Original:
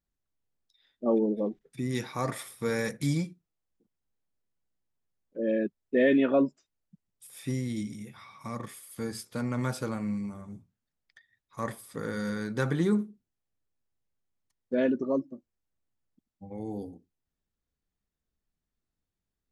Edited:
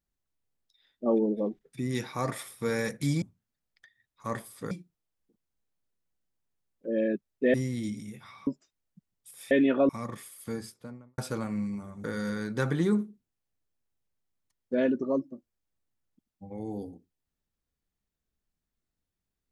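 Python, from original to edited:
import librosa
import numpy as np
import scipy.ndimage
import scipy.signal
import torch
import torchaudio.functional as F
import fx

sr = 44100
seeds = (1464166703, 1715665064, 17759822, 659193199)

y = fx.studio_fade_out(x, sr, start_s=8.92, length_s=0.77)
y = fx.edit(y, sr, fx.swap(start_s=6.05, length_s=0.38, other_s=7.47, other_length_s=0.93),
    fx.move(start_s=10.55, length_s=1.49, to_s=3.22), tone=tone)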